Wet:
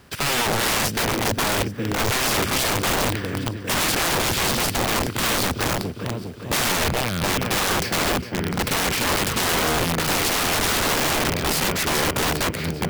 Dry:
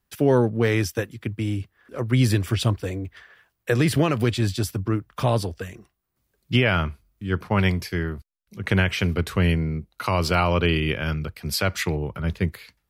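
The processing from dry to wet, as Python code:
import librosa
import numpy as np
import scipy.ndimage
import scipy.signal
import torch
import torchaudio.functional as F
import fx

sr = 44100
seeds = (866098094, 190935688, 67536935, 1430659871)

y = fx.bin_compress(x, sr, power=0.6)
y = fx.dynamic_eq(y, sr, hz=210.0, q=0.76, threshold_db=-31.0, ratio=4.0, max_db=7)
y = np.repeat(scipy.signal.resample_poly(y, 1, 2), 2)[:len(y)]
y = fx.echo_feedback(y, sr, ms=405, feedback_pct=57, wet_db=-11)
y = (np.mod(10.0 ** (16.5 / 20.0) * y + 1.0, 2.0) - 1.0) / 10.0 ** (16.5 / 20.0)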